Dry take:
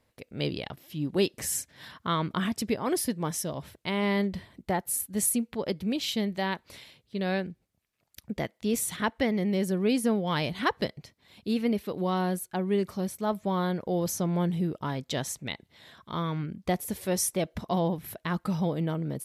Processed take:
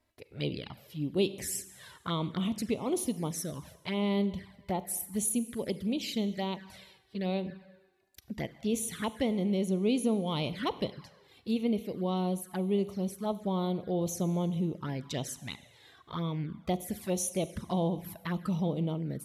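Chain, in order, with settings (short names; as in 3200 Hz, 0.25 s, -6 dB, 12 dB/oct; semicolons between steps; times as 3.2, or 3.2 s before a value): Schroeder reverb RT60 1.3 s, combs from 32 ms, DRR 14 dB; envelope flanger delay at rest 3.1 ms, full sweep at -25.5 dBFS; gain -2 dB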